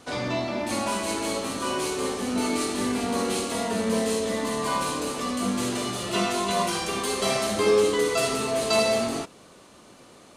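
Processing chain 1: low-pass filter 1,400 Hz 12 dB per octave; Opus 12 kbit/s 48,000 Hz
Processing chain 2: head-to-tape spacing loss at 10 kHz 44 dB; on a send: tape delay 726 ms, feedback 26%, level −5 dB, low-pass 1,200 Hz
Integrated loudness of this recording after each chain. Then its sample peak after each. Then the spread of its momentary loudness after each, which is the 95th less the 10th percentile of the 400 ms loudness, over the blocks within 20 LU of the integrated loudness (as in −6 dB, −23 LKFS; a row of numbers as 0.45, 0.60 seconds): −28.0, −28.5 LKFS; −12.0, −13.0 dBFS; 7, 7 LU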